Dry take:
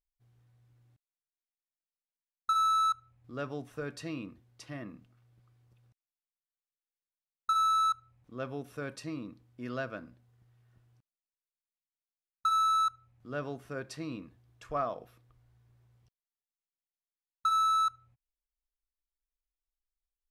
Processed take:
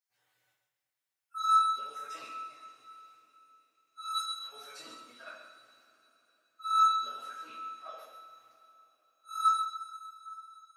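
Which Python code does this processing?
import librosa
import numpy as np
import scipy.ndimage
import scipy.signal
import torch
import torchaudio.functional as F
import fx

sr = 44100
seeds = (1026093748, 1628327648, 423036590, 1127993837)

p1 = fx.spec_dropout(x, sr, seeds[0], share_pct=30)
p2 = scipy.signal.sosfilt(scipy.signal.butter(2, 930.0, 'highpass', fs=sr, output='sos'), p1)
p3 = fx.level_steps(p2, sr, step_db=23)
p4 = p2 + F.gain(torch.from_numpy(p3), 0.0).numpy()
p5 = fx.auto_swell(p4, sr, attack_ms=392.0)
p6 = fx.stretch_vocoder_free(p5, sr, factor=0.53)
p7 = p6 + fx.echo_single(p6, sr, ms=133, db=-8.0, dry=0)
y = fx.rev_double_slope(p7, sr, seeds[1], early_s=0.53, late_s=4.0, knee_db=-18, drr_db=-9.0)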